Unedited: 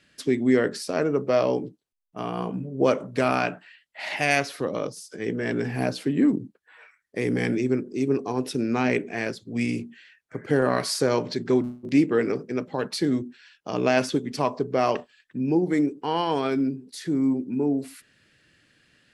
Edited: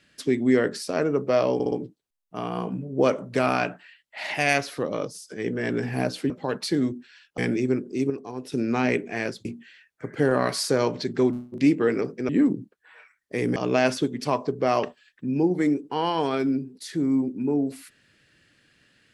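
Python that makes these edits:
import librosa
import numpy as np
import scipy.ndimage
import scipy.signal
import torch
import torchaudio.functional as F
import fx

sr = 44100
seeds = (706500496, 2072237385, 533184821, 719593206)

y = fx.edit(x, sr, fx.stutter(start_s=1.54, slice_s=0.06, count=4),
    fx.swap(start_s=6.12, length_s=1.27, other_s=12.6, other_length_s=1.08),
    fx.clip_gain(start_s=8.11, length_s=0.42, db=-8.0),
    fx.cut(start_s=9.46, length_s=0.3), tone=tone)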